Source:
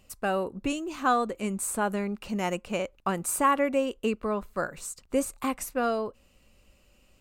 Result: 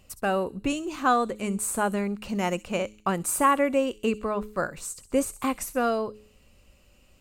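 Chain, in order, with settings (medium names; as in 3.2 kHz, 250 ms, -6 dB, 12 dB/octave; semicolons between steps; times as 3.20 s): peaking EQ 94 Hz +3.5 dB 1.3 oct; de-hum 106.1 Hz, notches 4; on a send: feedback echo behind a high-pass 65 ms, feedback 46%, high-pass 4.4 kHz, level -12.5 dB; on the sum: trim +2 dB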